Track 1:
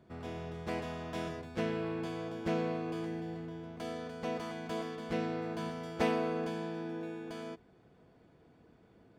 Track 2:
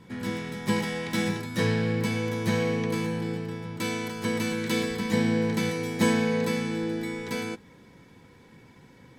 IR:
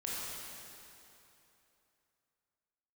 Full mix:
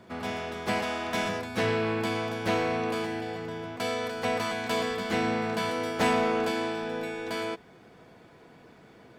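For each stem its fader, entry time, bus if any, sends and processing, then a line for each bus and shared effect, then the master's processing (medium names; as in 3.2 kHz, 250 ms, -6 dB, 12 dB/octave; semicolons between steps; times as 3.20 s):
+0.5 dB, 0.00 s, no send, overdrive pedal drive 19 dB, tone 7.4 kHz, clips at -17.5 dBFS
-6.5 dB, 0.00 s, polarity flipped, no send, none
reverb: none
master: none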